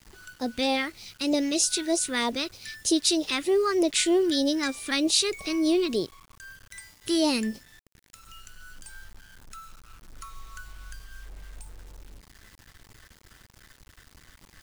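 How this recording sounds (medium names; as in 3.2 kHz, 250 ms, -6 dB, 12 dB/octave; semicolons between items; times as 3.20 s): phasing stages 2, 3.2 Hz, lowest notch 660–1500 Hz; a quantiser's noise floor 10-bit, dither none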